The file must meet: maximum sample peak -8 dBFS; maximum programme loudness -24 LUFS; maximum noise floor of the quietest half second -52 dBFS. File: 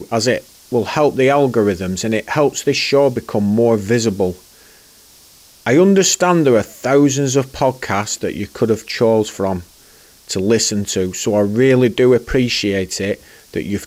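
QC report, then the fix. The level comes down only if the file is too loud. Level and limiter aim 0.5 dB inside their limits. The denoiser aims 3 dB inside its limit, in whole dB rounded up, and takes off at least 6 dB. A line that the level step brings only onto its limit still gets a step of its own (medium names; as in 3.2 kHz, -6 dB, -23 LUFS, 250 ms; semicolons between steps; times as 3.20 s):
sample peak -3.5 dBFS: fail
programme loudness -16.0 LUFS: fail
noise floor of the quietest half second -46 dBFS: fail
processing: trim -8.5 dB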